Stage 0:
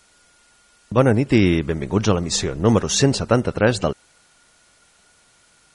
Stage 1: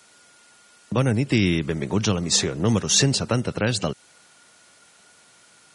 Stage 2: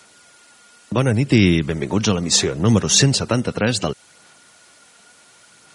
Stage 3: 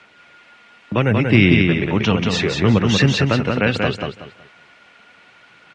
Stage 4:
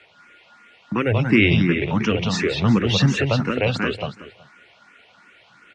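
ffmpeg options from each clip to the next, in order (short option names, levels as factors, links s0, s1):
-filter_complex "[0:a]highpass=130,acrossover=split=180|2300[s0][s1][s2];[s1]acompressor=threshold=0.0447:ratio=4[s3];[s0][s3][s2]amix=inputs=3:normalize=0,volume=1.33"
-af "aphaser=in_gain=1:out_gain=1:delay=4.3:decay=0.27:speed=0.7:type=sinusoidal,volume=1.5"
-filter_complex "[0:a]lowpass=f=2500:t=q:w=1.9,asplit=2[s0][s1];[s1]aecho=0:1:186|372|558|744:0.631|0.164|0.0427|0.0111[s2];[s0][s2]amix=inputs=2:normalize=0"
-filter_complex "[0:a]asplit=2[s0][s1];[s1]afreqshift=2.8[s2];[s0][s2]amix=inputs=2:normalize=1"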